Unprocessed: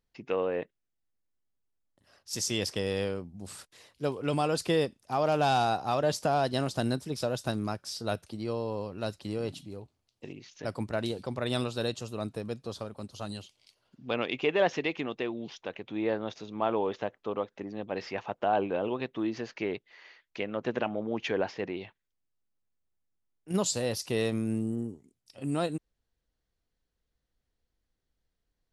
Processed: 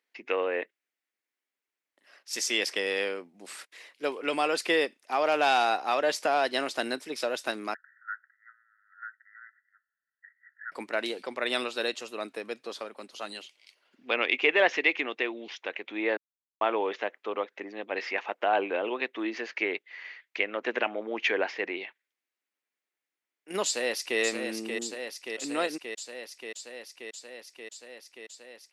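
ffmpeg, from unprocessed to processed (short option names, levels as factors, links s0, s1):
-filter_complex "[0:a]asettb=1/sr,asplit=3[s0][s1][s2];[s0]atrim=end=7.744[s3];[s1]atrim=start=7.74:end=10.72,asetpts=PTS-STARTPTS,afade=t=in:d=0.004:c=qsin,afade=t=out:st=2.976:d=0.004:c=qsin,asuperpass=centerf=1600:order=20:qfactor=2.5[s4];[s2]atrim=start=10.716[s5];[s3][s4]acrossfade=d=0.004:c1=hsin:c2=qsin[s6];[s6][s5]acrossfade=d=0.004:c1=qsin:c2=hsin,asplit=2[s7][s8];[s8]afade=t=in:st=23.65:d=0.01,afade=t=out:st=24.2:d=0.01,aecho=0:1:580|1160|1740|2320|2900|3480|4060|4640|5220|5800|6380|6960:0.501187|0.40095|0.32076|0.256608|0.205286|0.164229|0.131383|0.105107|0.0840853|0.0672682|0.0538146|0.0430517[s9];[s7][s9]amix=inputs=2:normalize=0,asplit=3[s10][s11][s12];[s10]atrim=end=16.17,asetpts=PTS-STARTPTS,afade=t=out:st=16.166:d=0.004:c=hsin[s13];[s11]atrim=start=16.17:end=16.61,asetpts=PTS-STARTPTS,volume=0[s14];[s12]atrim=start=16.61,asetpts=PTS-STARTPTS,afade=t=in:d=0.004:c=hsin[s15];[s13][s14][s15]concat=n=3:v=0:a=1,highpass=f=290:w=0.5412,highpass=f=290:w=1.3066,equalizer=f=2100:t=o:w=1.1:g=12"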